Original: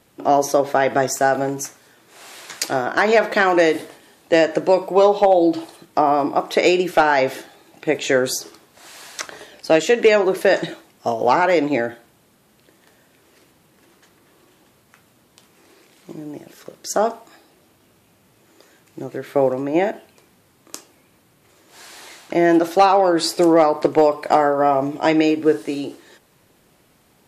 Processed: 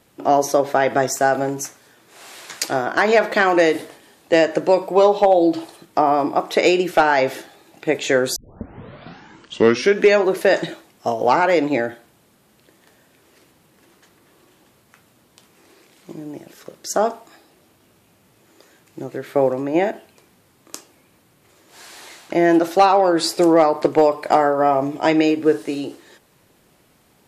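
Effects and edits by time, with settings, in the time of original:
0:08.36: tape start 1.83 s

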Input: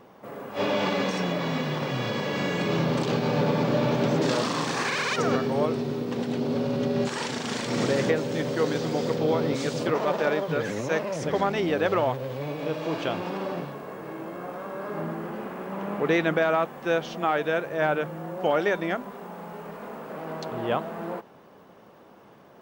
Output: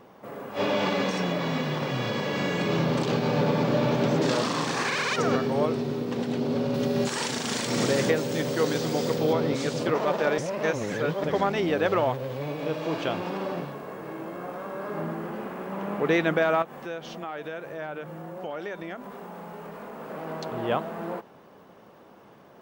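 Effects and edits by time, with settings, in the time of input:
0:06.74–0:09.33: high-shelf EQ 6,200 Hz +10.5 dB
0:10.38–0:11.24: reverse
0:16.62–0:20.00: downward compressor 2.5 to 1, threshold −36 dBFS

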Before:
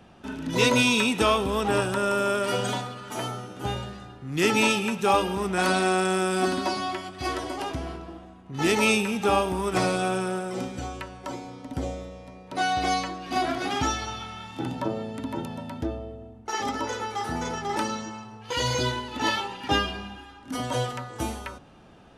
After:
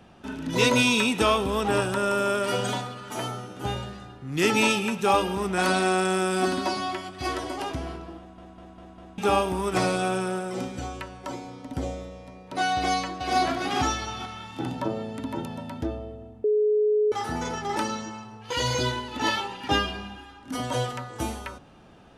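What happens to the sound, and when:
0:08.18: stutter in place 0.20 s, 5 plays
0:12.76–0:13.37: delay throw 440 ms, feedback 30%, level −3 dB
0:16.44–0:17.12: beep over 423 Hz −18.5 dBFS

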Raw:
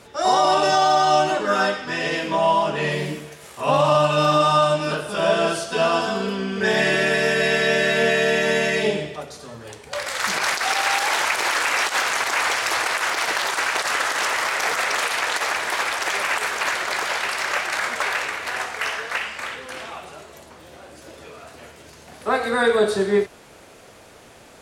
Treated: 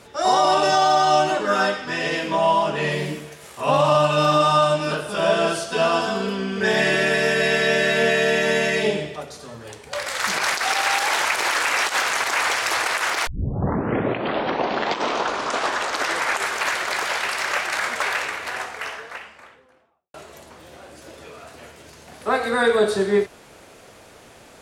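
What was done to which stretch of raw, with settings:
0:13.27: tape start 3.39 s
0:18.13–0:20.14: fade out and dull

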